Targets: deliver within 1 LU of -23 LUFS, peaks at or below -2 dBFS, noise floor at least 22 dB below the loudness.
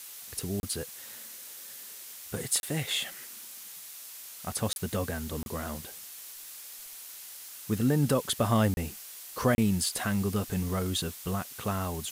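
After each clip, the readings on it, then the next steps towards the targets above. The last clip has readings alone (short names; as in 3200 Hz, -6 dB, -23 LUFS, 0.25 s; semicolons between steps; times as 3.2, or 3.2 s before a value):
dropouts 6; longest dropout 31 ms; noise floor -45 dBFS; noise floor target -54 dBFS; loudness -32.0 LUFS; peak -14.0 dBFS; loudness target -23.0 LUFS
-> interpolate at 0.6/2.6/4.73/5.43/8.74/9.55, 31 ms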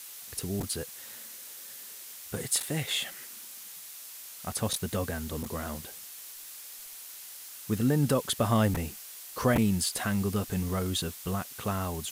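dropouts 0; noise floor -45 dBFS; noise floor target -54 dBFS
-> denoiser 9 dB, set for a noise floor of -45 dBFS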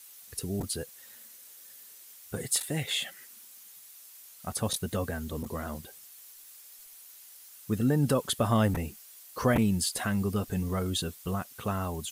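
noise floor -52 dBFS; noise floor target -53 dBFS
-> denoiser 6 dB, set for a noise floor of -52 dBFS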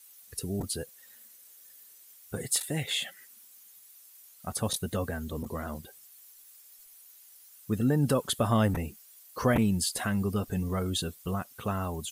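noise floor -55 dBFS; loudness -30.5 LUFS; peak -14.0 dBFS; loudness target -23.0 LUFS
-> gain +7.5 dB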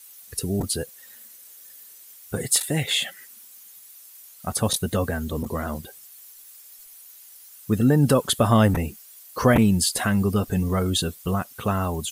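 loudness -23.0 LUFS; peak -6.5 dBFS; noise floor -48 dBFS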